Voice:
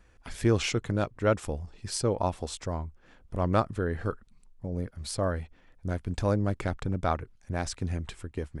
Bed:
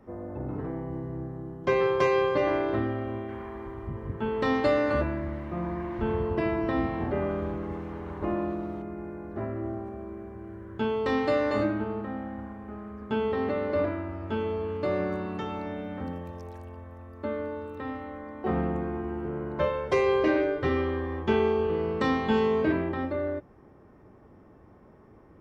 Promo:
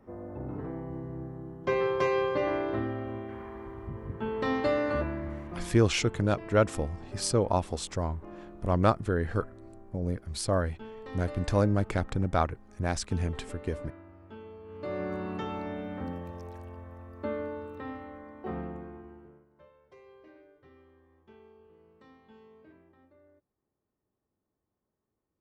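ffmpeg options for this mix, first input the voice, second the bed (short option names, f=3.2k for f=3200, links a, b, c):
-filter_complex "[0:a]adelay=5300,volume=1.5dB[a];[1:a]volume=11.5dB,afade=t=out:st=5.38:d=0.43:silence=0.223872,afade=t=in:st=14.64:d=0.66:silence=0.177828,afade=t=out:st=17.29:d=2.17:silence=0.0316228[b];[a][b]amix=inputs=2:normalize=0"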